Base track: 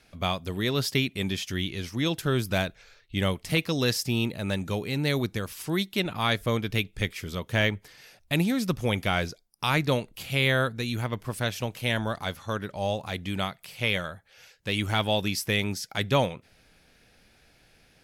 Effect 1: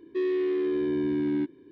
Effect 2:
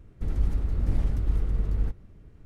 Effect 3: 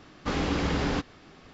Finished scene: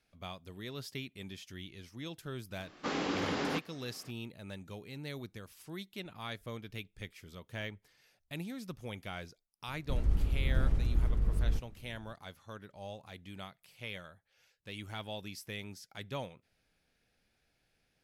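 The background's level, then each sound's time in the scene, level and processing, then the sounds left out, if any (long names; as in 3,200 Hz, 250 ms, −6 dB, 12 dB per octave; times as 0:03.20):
base track −16.5 dB
0:02.58: mix in 3 −4.5 dB + high-pass filter 220 Hz
0:09.68: mix in 2 −4 dB
not used: 1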